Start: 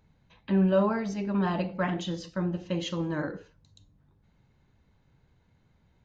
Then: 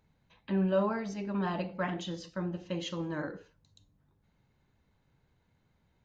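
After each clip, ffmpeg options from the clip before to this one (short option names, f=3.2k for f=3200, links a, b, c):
-af "lowshelf=f=220:g=-4,volume=-3.5dB"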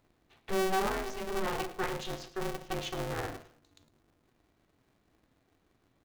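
-af "volume=25dB,asoftclip=hard,volume=-25dB,aecho=1:1:107|214|321:0.158|0.0507|0.0162,aeval=exprs='val(0)*sgn(sin(2*PI*190*n/s))':c=same"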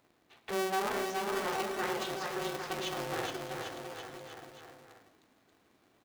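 -filter_complex "[0:a]highpass=f=290:p=1,asplit=2[a][b];[b]acompressor=threshold=-44dB:ratio=6,volume=1.5dB[c];[a][c]amix=inputs=2:normalize=0,aecho=1:1:420|798|1138|1444|1720:0.631|0.398|0.251|0.158|0.1,volume=-3dB"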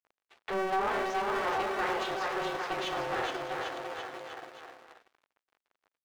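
-filter_complex "[0:a]aeval=exprs='sgn(val(0))*max(abs(val(0))-0.00106,0)':c=same,equalizer=f=160:w=0.84:g=-5.5,asplit=2[a][b];[b]highpass=f=720:p=1,volume=17dB,asoftclip=type=tanh:threshold=-19.5dB[c];[a][c]amix=inputs=2:normalize=0,lowpass=f=1.6k:p=1,volume=-6dB"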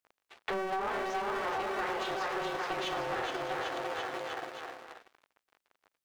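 -af "acompressor=threshold=-37dB:ratio=6,volume=5.5dB"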